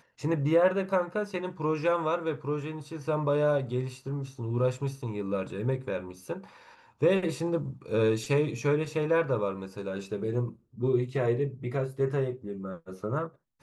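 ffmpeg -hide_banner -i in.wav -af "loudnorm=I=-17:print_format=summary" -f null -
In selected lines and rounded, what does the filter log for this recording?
Input Integrated:    -30.1 LUFS
Input True Peak:     -12.5 dBTP
Input LRA:             2.3 LU
Input Threshold:     -40.2 LUFS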